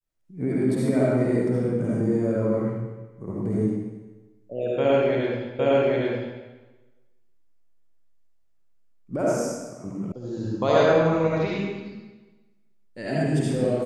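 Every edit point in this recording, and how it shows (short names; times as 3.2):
5.59 repeat of the last 0.81 s
10.12 sound cut off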